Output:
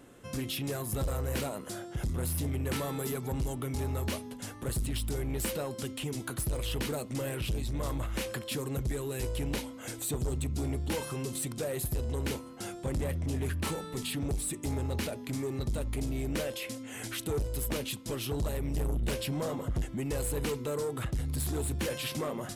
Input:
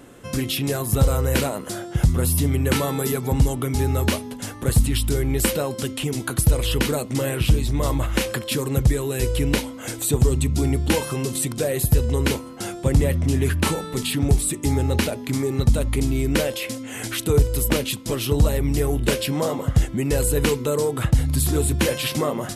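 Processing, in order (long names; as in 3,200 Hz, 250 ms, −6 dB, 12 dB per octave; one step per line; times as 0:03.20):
0:18.74–0:19.82: low-shelf EQ 110 Hz +10.5 dB
soft clipping −18 dBFS, distortion −8 dB
level −9 dB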